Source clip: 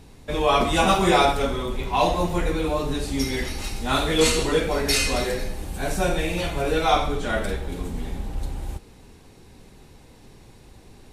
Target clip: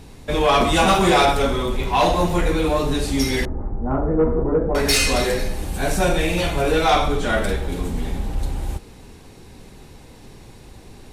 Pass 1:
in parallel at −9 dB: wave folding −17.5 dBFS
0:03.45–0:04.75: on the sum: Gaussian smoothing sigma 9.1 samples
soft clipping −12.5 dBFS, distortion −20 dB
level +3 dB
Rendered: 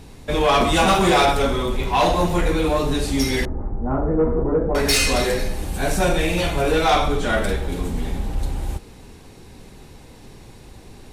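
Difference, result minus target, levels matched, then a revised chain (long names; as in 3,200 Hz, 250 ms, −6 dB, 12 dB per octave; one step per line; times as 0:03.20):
wave folding: distortion +29 dB
in parallel at −9 dB: wave folding −8 dBFS
0:03.45–0:04.75: on the sum: Gaussian smoothing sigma 9.1 samples
soft clipping −12.5 dBFS, distortion −15 dB
level +3 dB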